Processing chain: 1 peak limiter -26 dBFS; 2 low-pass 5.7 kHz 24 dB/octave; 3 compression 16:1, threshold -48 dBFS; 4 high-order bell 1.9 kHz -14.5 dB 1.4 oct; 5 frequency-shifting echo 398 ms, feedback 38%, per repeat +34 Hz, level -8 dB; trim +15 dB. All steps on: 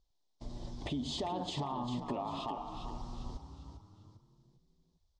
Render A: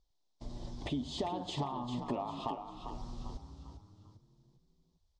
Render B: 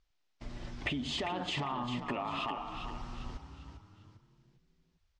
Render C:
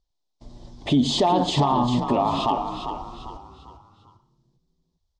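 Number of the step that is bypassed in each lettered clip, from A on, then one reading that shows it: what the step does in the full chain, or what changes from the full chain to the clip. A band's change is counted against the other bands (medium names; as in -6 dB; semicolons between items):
1, mean gain reduction 2.5 dB; 4, loudness change +2.5 LU; 3, mean gain reduction 10.0 dB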